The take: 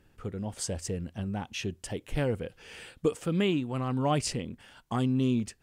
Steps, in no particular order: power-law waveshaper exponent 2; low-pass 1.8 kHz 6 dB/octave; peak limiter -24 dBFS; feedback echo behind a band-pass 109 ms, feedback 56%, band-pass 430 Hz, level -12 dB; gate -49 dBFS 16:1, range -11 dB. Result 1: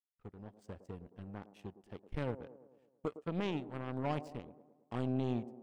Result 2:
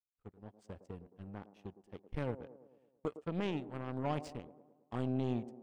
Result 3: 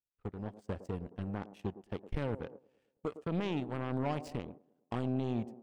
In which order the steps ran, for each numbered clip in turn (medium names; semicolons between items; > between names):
low-pass > gate > power-law waveshaper > peak limiter > feedback echo behind a band-pass; power-law waveshaper > low-pass > gate > peak limiter > feedback echo behind a band-pass; low-pass > peak limiter > power-law waveshaper > feedback echo behind a band-pass > gate